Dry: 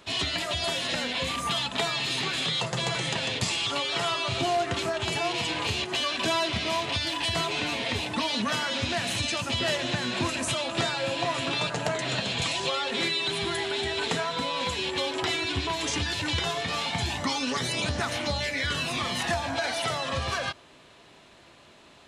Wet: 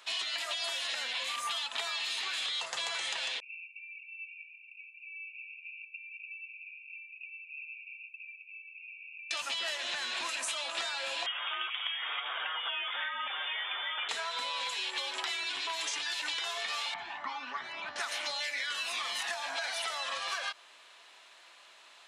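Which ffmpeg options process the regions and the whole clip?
ffmpeg -i in.wav -filter_complex "[0:a]asettb=1/sr,asplit=3[link_01][link_02][link_03];[link_01]atrim=end=3.404[link_04];[link_02]atrim=start=3.4:end=9.31,asetpts=PTS-STARTPTS,afade=type=in:duration=0.004:curve=qsin,afade=type=out:start_time=5.906:duration=0.004:curve=qsin,asuperpass=centerf=2500:order=20:qfactor=5.2,aderivative,aecho=1:1:662:0.251,atrim=end_sample=260631[link_05];[link_03]atrim=start=9.306[link_06];[link_04][link_05]acrossfade=duration=0.004:curve1=hsin:curve2=qsin[link_07];[link_07][link_06]acrossfade=duration=0.004:curve1=qsin:curve2=hsin,asettb=1/sr,asplit=3[link_08][link_09][link_10];[link_08]atrim=end=11.264[link_11];[link_09]atrim=start=11.26:end=14.09,asetpts=PTS-STARTPTS,afade=type=in:duration=0.004:curve=qsin,afade=type=out:start_time=2.826:duration=0.004:curve=qsin,highpass=540,lowpass=frequency=3300:width_type=q:width=0.5098,lowpass=frequency=3300:width_type=q:width=0.6013,lowpass=frequency=3300:width_type=q:width=0.9,lowpass=frequency=3300:width_type=q:width=2.563,afreqshift=-3900[link_12];[link_10]atrim=start=14.086[link_13];[link_11][link_12]acrossfade=duration=0.004:curve1=hsin:curve2=qsin[link_14];[link_14][link_13]acrossfade=duration=0.004:curve1=qsin:curve2=hsin,asettb=1/sr,asplit=3[link_15][link_16][link_17];[link_15]atrim=end=16.944[link_18];[link_16]atrim=start=16.94:end=17.96,asetpts=PTS-STARTPTS,afade=type=in:duration=0.004:curve=qsin,afade=type=out:start_time=1.016:duration=0.004:curve=qsin,lowpass=1500,equalizer=frequency=490:width=3.5:gain=-14.5[link_19];[link_17]atrim=start=17.956[link_20];[link_18][link_19]acrossfade=duration=0.004:curve1=hsin:curve2=qsin[link_21];[link_21][link_20]acrossfade=duration=0.004:curve1=qsin:curve2=hsin,highpass=1000,acompressor=threshold=-32dB:ratio=6" out.wav

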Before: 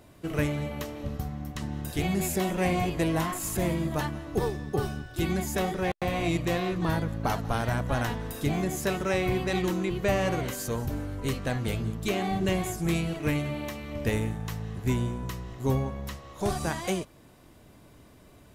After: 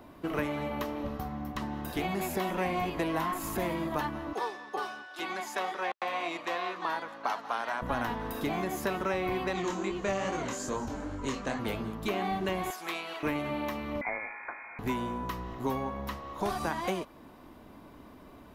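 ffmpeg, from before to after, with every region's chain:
ffmpeg -i in.wav -filter_complex "[0:a]asettb=1/sr,asplit=3[link_01][link_02][link_03];[link_01]atrim=end=4.334[link_04];[link_02]atrim=start=4.33:end=7.82,asetpts=PTS-STARTPTS,afade=type=in:duration=0.004:curve=qsin,afade=type=out:start_time=3.486:duration=0.004:curve=qsin,highpass=790,lowpass=7500,highshelf=frequency=5100:gain=4.5[link_05];[link_03]atrim=start=7.816[link_06];[link_04][link_05]acrossfade=duration=0.004:curve1=hsin:curve2=qsin[link_07];[link_07][link_06]acrossfade=duration=0.004:curve1=qsin:curve2=hsin,asettb=1/sr,asplit=3[link_08][link_09][link_10];[link_08]atrim=end=9.534[link_11];[link_09]atrim=start=9.53:end=11.59,asetpts=PTS-STARTPTS,afade=type=in:duration=0.004:curve=qsin,afade=type=out:start_time=2.056:duration=0.004:curve=qsin,lowpass=frequency=7100:width_type=q:width=5.8,flanger=delay=19.5:depth=6.5:speed=2.4[link_12];[link_10]atrim=start=11.586[link_13];[link_11][link_12]acrossfade=duration=0.004:curve1=hsin:curve2=qsin[link_14];[link_14][link_13]acrossfade=duration=0.004:curve1=qsin:curve2=hsin,asettb=1/sr,asplit=3[link_15][link_16][link_17];[link_15]atrim=end=12.704[link_18];[link_16]atrim=start=12.7:end=13.23,asetpts=PTS-STARTPTS,afade=type=in:duration=0.004:curve=qsin,afade=type=out:start_time=0.526:duration=0.004:curve=qsin,highpass=880,equalizer=frequency=3800:width=0.87:gain=6[link_19];[link_17]atrim=start=13.226[link_20];[link_18][link_19]acrossfade=duration=0.004:curve1=hsin:curve2=qsin[link_21];[link_21][link_20]acrossfade=duration=0.004:curve1=qsin:curve2=hsin,asettb=1/sr,asplit=3[link_22][link_23][link_24];[link_22]atrim=end=14.014[link_25];[link_23]atrim=start=14.01:end=14.79,asetpts=PTS-STARTPTS,afade=type=in:duration=0.004:curve=qsin,afade=type=out:start_time=0.776:duration=0.004:curve=qsin,highpass=410,acrusher=bits=7:mix=0:aa=0.5,lowpass=frequency=2200:width_type=q:width=0.5098,lowpass=frequency=2200:width_type=q:width=0.6013,lowpass=frequency=2200:width_type=q:width=0.9,lowpass=frequency=2200:width_type=q:width=2.563,afreqshift=-2600[link_26];[link_24]atrim=start=14.786[link_27];[link_25][link_26]acrossfade=duration=0.004:curve1=hsin:curve2=qsin[link_28];[link_28][link_27]acrossfade=duration=0.004:curve1=qsin:curve2=hsin,equalizer=frequency=125:width_type=o:width=1:gain=-6,equalizer=frequency=250:width_type=o:width=1:gain=7,equalizer=frequency=1000:width_type=o:width=1:gain=8,equalizer=frequency=8000:width_type=o:width=1:gain=-10,acrossover=split=430|1400[link_29][link_30][link_31];[link_29]acompressor=threshold=-36dB:ratio=4[link_32];[link_30]acompressor=threshold=-33dB:ratio=4[link_33];[link_31]acompressor=threshold=-37dB:ratio=4[link_34];[link_32][link_33][link_34]amix=inputs=3:normalize=0" out.wav

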